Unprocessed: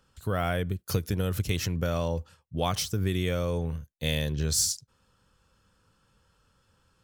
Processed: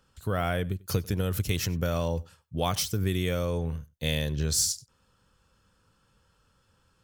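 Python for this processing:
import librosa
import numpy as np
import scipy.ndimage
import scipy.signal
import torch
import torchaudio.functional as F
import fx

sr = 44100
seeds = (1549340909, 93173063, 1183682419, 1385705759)

y = fx.high_shelf(x, sr, hz=10000.0, db=6.5, at=(1.33, 3.46))
y = y + 10.0 ** (-23.5 / 20.0) * np.pad(y, (int(95 * sr / 1000.0), 0))[:len(y)]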